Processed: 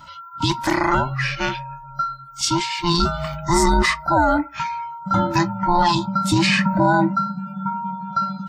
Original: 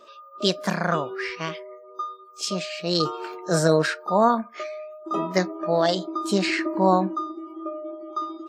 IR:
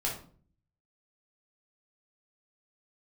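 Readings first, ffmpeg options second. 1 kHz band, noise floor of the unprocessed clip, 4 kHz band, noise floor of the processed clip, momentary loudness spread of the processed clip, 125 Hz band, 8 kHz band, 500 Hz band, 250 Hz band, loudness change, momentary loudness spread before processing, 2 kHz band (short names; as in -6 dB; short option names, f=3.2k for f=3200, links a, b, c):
+6.5 dB, -47 dBFS, +5.0 dB, -39 dBFS, 10 LU, +7.0 dB, +6.5 dB, -2.0 dB, +5.0 dB, +4.5 dB, 14 LU, +7.0 dB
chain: -af "afftfilt=real='real(if(between(b,1,1008),(2*floor((b-1)/24)+1)*24-b,b),0)':imag='imag(if(between(b,1,1008),(2*floor((b-1)/24)+1)*24-b,b),0)*if(between(b,1,1008),-1,1)':win_size=2048:overlap=0.75,alimiter=limit=-15dB:level=0:latency=1:release=12,volume=7.5dB"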